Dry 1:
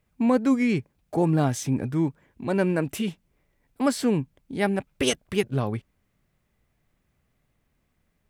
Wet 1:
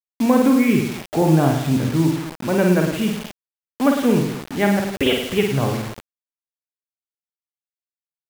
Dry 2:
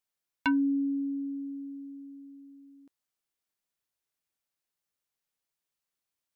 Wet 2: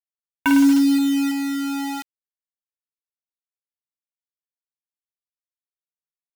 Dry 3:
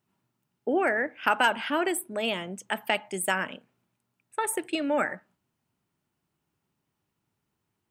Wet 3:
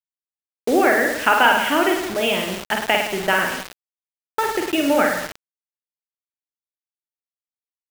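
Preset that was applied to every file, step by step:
downsampling to 8,000 Hz
reverse bouncing-ball delay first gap 50 ms, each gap 1.1×, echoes 5
bit reduction 6 bits
loudness normalisation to −19 LKFS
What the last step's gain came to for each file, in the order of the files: +4.5, +7.5, +7.0 decibels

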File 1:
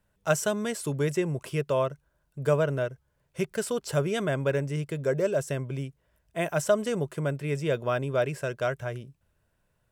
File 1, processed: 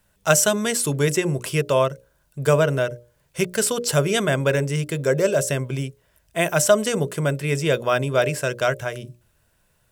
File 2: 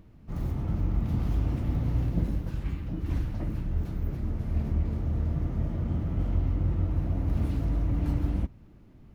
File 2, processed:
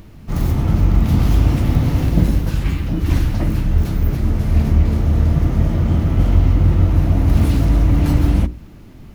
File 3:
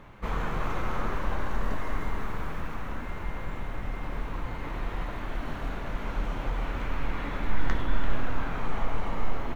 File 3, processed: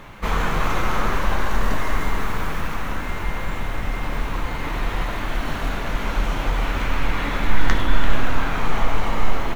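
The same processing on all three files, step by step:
high-shelf EQ 2,600 Hz +8.5 dB
mains-hum notches 60/120/180/240/300/360/420/480/540/600 Hz
normalise the peak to −1.5 dBFS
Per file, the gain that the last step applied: +6.5, +14.0, +8.5 decibels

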